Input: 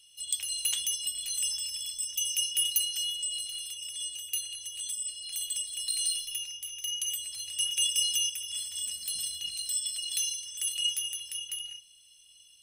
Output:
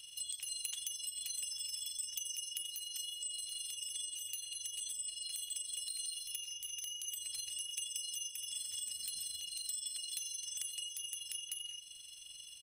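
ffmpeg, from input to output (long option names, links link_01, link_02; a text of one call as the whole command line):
ffmpeg -i in.wav -filter_complex "[0:a]acompressor=threshold=-46dB:ratio=3,aecho=1:1:89:0.106,acrossover=split=3400|6900[link_01][link_02][link_03];[link_01]acompressor=threshold=-58dB:ratio=4[link_04];[link_02]acompressor=threshold=-51dB:ratio=4[link_05];[link_03]acompressor=threshold=-48dB:ratio=4[link_06];[link_04][link_05][link_06]amix=inputs=3:normalize=0,tremolo=f=23:d=0.519,volume=8dB" out.wav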